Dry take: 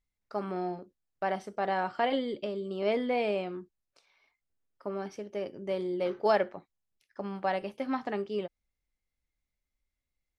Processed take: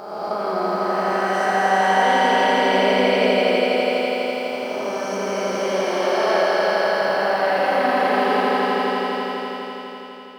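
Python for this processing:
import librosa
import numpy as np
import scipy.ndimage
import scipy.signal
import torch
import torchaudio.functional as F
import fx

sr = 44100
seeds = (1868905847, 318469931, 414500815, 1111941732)

p1 = fx.spec_swells(x, sr, rise_s=1.85)
p2 = fx.highpass(p1, sr, hz=370.0, slope=6)
p3 = fx.high_shelf(p2, sr, hz=4700.0, db=3.0)
p4 = fx.over_compress(p3, sr, threshold_db=-32.0, ratio=-1.0)
p5 = p3 + (p4 * librosa.db_to_amplitude(1.5))
p6 = fx.quant_dither(p5, sr, seeds[0], bits=10, dither='none')
p7 = fx.echo_swell(p6, sr, ms=83, loudest=5, wet_db=-5)
p8 = fx.rev_schroeder(p7, sr, rt60_s=3.3, comb_ms=28, drr_db=-1.5)
y = p8 * librosa.db_to_amplitude(-2.5)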